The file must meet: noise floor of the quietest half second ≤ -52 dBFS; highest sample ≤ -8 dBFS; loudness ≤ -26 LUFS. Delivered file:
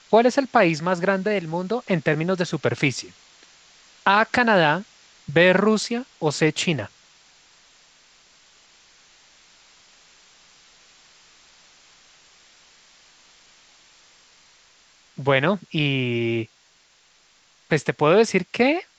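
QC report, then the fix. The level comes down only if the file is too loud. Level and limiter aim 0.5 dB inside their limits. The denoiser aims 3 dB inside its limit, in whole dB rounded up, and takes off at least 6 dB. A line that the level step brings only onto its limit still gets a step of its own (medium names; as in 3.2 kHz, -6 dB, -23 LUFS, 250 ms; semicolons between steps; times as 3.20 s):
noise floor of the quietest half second -58 dBFS: pass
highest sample -4.0 dBFS: fail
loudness -21.0 LUFS: fail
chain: trim -5.5 dB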